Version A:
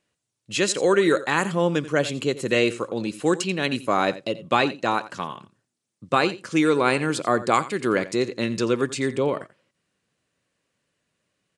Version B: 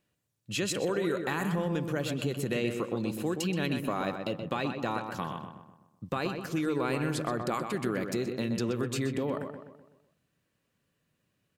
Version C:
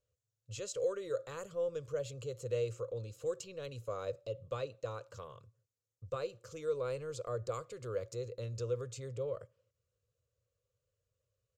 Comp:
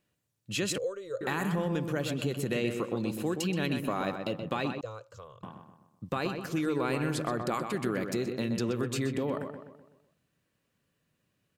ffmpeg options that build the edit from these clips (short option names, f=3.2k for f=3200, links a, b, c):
-filter_complex "[2:a]asplit=2[a][b];[1:a]asplit=3[c][d][e];[c]atrim=end=0.782[f];[a]atrim=start=0.778:end=1.212[g];[d]atrim=start=1.208:end=4.812[h];[b]atrim=start=4.808:end=5.432[i];[e]atrim=start=5.428[j];[f][g]acrossfade=d=0.004:c1=hsin:c2=hsin[k];[k][h]acrossfade=d=0.004:c1=hsin:c2=hsin[l];[l][i]acrossfade=d=0.004:c1=hsin:c2=hsin[m];[m][j]acrossfade=d=0.004:c1=hsin:c2=hsin"